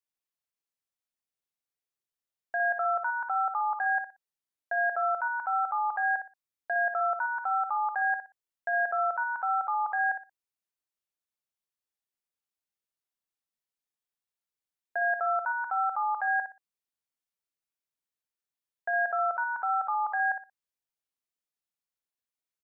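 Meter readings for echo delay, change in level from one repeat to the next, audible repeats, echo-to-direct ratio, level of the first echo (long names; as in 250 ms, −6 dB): 60 ms, −12.5 dB, 3, −8.0 dB, −8.0 dB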